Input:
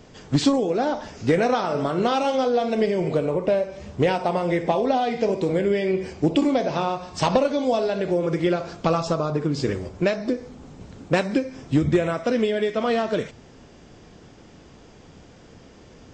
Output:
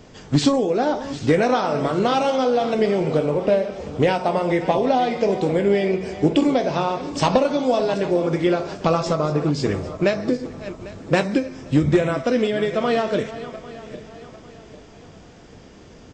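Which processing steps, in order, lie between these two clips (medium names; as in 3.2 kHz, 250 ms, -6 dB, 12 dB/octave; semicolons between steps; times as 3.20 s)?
backward echo that repeats 399 ms, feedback 60%, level -14 dB; doubling 20 ms -13 dB; trim +2 dB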